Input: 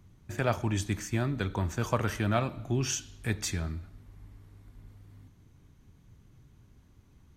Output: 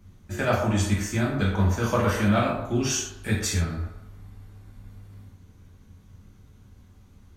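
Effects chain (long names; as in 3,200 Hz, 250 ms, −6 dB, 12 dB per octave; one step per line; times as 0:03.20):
0:01.54–0:02.07: notch filter 7,800 Hz, Q 5.2
on a send: delay with a band-pass on its return 125 ms, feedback 36%, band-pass 710 Hz, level −6 dB
on the sum: reverb whose tail is shaped and stops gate 150 ms falling, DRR −4.5 dB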